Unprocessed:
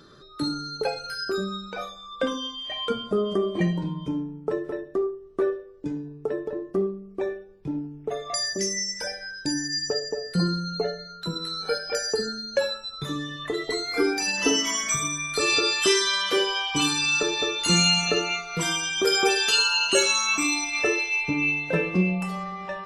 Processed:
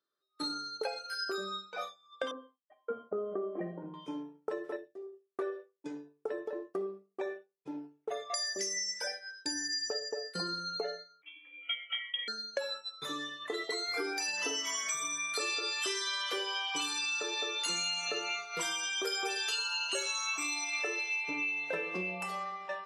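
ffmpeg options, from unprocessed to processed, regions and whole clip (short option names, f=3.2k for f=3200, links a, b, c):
-filter_complex "[0:a]asettb=1/sr,asplit=3[a][b][c];[a]atrim=end=2.314[d];[b]atrim=start=2.31:end=3.94,asetpts=PTS-STARTPTS,afade=t=in:d=0.004:c=qsin,afade=t=out:st=1.626:d=0.004:c=qsin,lowpass=f=1.3k:w=0.5412,lowpass=f=1.3k:w=1.3066,agate=range=-33dB:threshold=-43dB:ratio=3:release=100:detection=peak,equalizer=f=980:t=o:w=0.29:g=-13.5[e];[c]atrim=start=3.936[f];[d][e]acrossfade=d=0.004:c1=hsin:c2=qsin[g];[g][f]acrossfade=d=0.004:c1=qsin:c2=hsin,asettb=1/sr,asplit=3[h][i][j];[h]atrim=end=4.764[k];[i]atrim=start=4.76:end=5.3,asetpts=PTS-STARTPTS,afade=t=in:d=0.004:c=qsin,afade=t=out:st=0.536:d=0.004:c=qsin,equalizer=f=1.2k:t=o:w=0.7:g=-14.5,acompressor=threshold=-32dB:ratio=5:attack=3.2:release=140:knee=1:detection=peak[l];[j]atrim=start=5.296[m];[k][l]acrossfade=d=0.004:c1=hsin:c2=qsin[n];[n][m]acrossfade=d=0.004:c1=qsin:c2=hsin,asettb=1/sr,asplit=3[o][p][q];[o]atrim=end=11.224[r];[p]atrim=start=11.22:end=12.28,asetpts=PTS-STARTPTS,afade=t=in:d=0.004:c=qsin,afade=t=out:st=1.056:d=0.004:c=qsin,highpass=f=450:w=0.5412,highpass=f=450:w=1.3066,asplit=2[s][t];[t]adelay=13,volume=-9dB[u];[s][u]amix=inputs=2:normalize=0,atrim=end_sample=46746,lowpass=f=3.1k:t=q:w=0.5098,lowpass=f=3.1k:t=q:w=0.6013,lowpass=f=3.1k:t=q:w=0.9,lowpass=f=3.1k:t=q:w=2.563,afreqshift=-3700[v];[q]atrim=start=12.276[w];[r][v]acrossfade=d=0.004:c1=hsin:c2=qsin[x];[x][w]acrossfade=d=0.004:c1=qsin:c2=hsin,agate=range=-33dB:threshold=-30dB:ratio=3:detection=peak,highpass=480,acompressor=threshold=-30dB:ratio=6,volume=-2dB"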